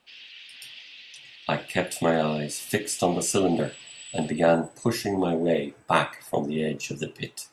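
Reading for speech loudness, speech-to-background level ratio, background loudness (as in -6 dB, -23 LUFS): -26.5 LUFS, 17.5 dB, -44.0 LUFS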